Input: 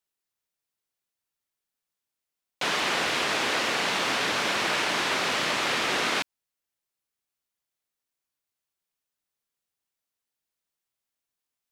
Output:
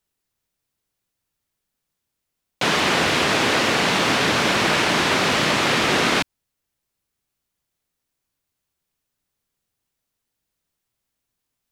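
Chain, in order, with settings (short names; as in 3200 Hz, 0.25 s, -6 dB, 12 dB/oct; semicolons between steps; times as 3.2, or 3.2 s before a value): low shelf 270 Hz +12 dB; gain +6 dB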